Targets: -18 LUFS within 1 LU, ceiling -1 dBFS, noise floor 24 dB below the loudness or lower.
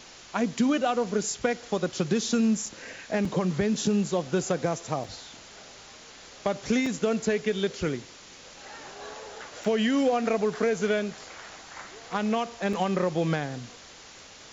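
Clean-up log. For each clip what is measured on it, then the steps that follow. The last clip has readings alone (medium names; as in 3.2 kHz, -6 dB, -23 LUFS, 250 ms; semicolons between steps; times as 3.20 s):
dropouts 6; longest dropout 3.7 ms; noise floor -48 dBFS; noise floor target -52 dBFS; loudness -27.5 LUFS; peak level -13.5 dBFS; loudness target -18.0 LUFS
-> interpolate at 2.66/3.25/5.04/6.86/9.64/12.73 s, 3.7 ms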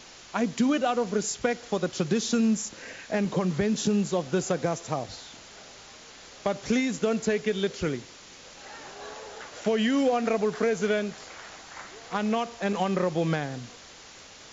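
dropouts 0; noise floor -48 dBFS; noise floor target -52 dBFS
-> noise reduction 6 dB, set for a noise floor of -48 dBFS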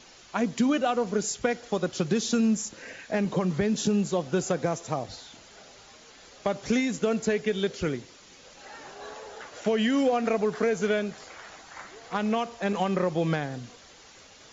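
noise floor -52 dBFS; loudness -27.5 LUFS; peak level -13.5 dBFS; loudness target -18.0 LUFS
-> trim +9.5 dB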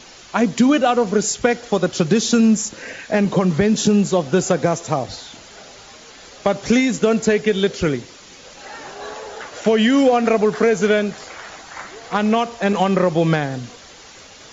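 loudness -18.0 LUFS; peak level -4.0 dBFS; noise floor -42 dBFS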